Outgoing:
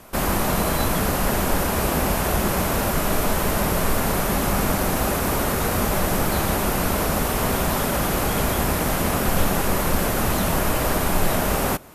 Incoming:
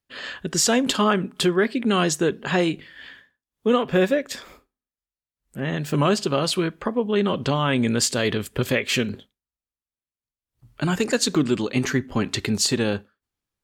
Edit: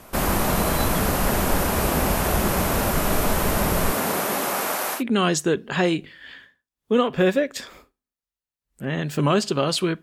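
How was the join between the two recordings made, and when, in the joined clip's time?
outgoing
0:03.90–0:05.03: high-pass filter 160 Hz → 820 Hz
0:04.98: continue with incoming from 0:01.73, crossfade 0.10 s

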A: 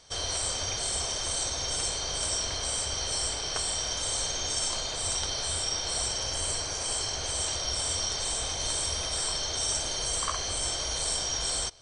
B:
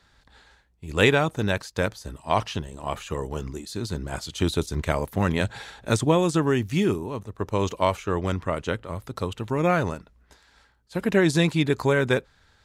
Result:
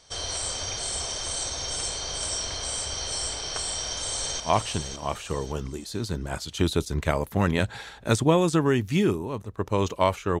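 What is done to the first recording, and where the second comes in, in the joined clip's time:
A
0:03.67–0:04.40: delay throw 560 ms, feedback 35%, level −6 dB
0:04.40: continue with B from 0:02.21

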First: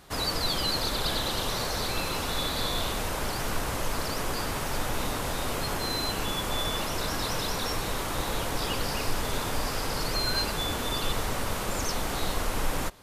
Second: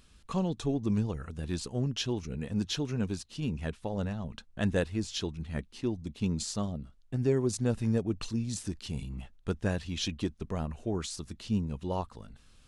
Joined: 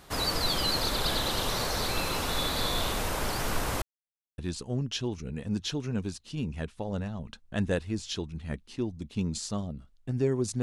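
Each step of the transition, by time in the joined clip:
first
0:03.82–0:04.38: silence
0:04.38: continue with second from 0:01.43

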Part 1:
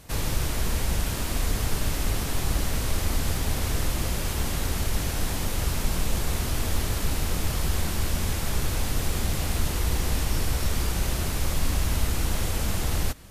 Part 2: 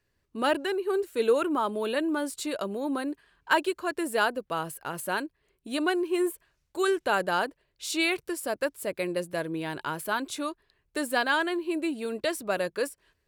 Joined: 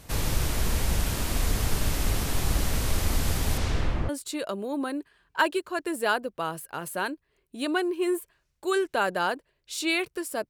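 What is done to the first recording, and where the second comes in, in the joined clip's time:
part 1
0:03.57–0:04.09: low-pass filter 8,100 Hz → 1,300 Hz
0:04.09: continue with part 2 from 0:02.21

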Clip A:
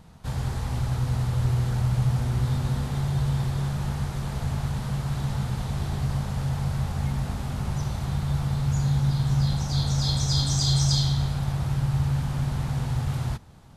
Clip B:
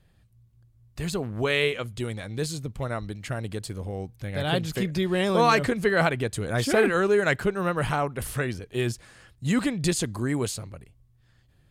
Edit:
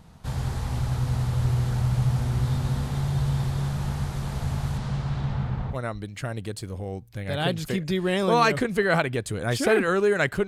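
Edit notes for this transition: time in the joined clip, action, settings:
clip A
0:04.77–0:05.77: low-pass filter 7,900 Hz → 1,500 Hz
0:05.73: continue with clip B from 0:02.80, crossfade 0.08 s

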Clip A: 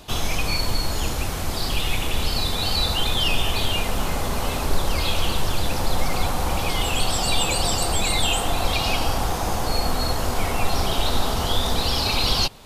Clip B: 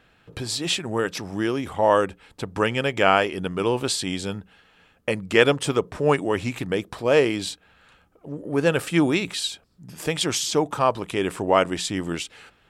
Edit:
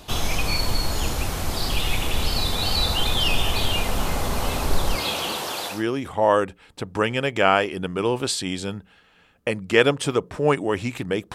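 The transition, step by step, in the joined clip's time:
clip A
0:04.95–0:05.84: high-pass filter 140 Hz → 640 Hz
0:05.75: continue with clip B from 0:01.36, crossfade 0.18 s

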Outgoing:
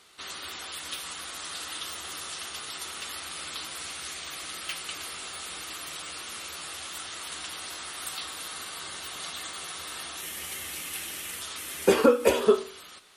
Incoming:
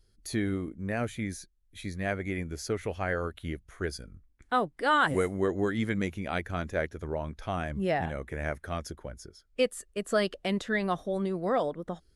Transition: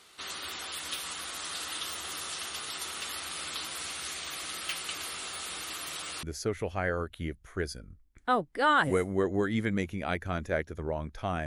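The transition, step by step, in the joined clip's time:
outgoing
0:06.23: continue with incoming from 0:02.47

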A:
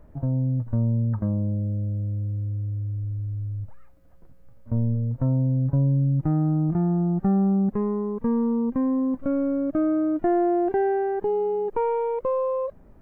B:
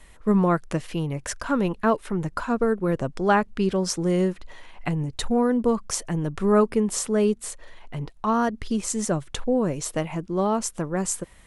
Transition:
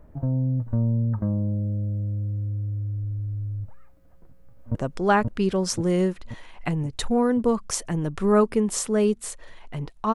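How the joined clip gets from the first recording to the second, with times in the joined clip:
A
0:04.05–0:04.75: delay throw 530 ms, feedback 60%, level −2 dB
0:04.75: continue with B from 0:02.95

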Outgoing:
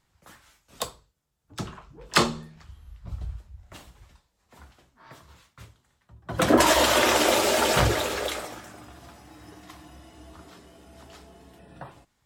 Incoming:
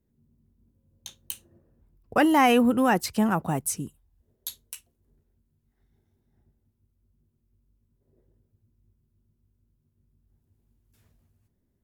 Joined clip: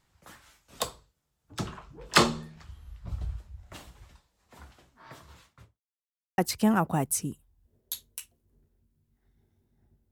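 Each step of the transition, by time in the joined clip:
outgoing
0:05.39–0:05.82: fade out and dull
0:05.82–0:06.38: silence
0:06.38: continue with incoming from 0:02.93

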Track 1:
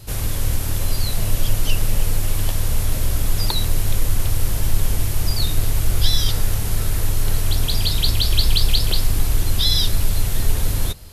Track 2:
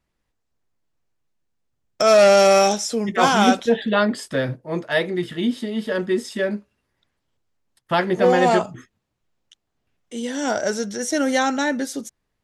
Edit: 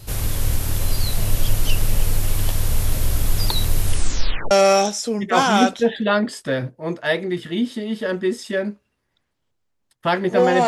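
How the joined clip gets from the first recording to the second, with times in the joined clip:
track 1
0:03.82: tape stop 0.69 s
0:04.51: continue with track 2 from 0:02.37

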